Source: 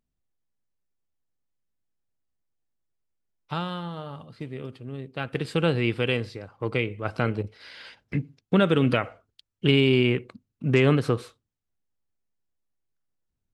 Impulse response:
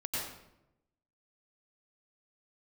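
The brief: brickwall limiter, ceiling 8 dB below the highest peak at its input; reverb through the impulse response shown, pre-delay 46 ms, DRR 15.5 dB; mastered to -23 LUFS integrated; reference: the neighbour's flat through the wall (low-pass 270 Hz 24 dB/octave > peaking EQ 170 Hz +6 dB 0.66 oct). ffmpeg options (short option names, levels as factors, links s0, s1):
-filter_complex "[0:a]alimiter=limit=0.178:level=0:latency=1,asplit=2[s0][s1];[1:a]atrim=start_sample=2205,adelay=46[s2];[s1][s2]afir=irnorm=-1:irlink=0,volume=0.106[s3];[s0][s3]amix=inputs=2:normalize=0,lowpass=f=270:w=0.5412,lowpass=f=270:w=1.3066,equalizer=f=170:t=o:w=0.66:g=6,volume=2.11"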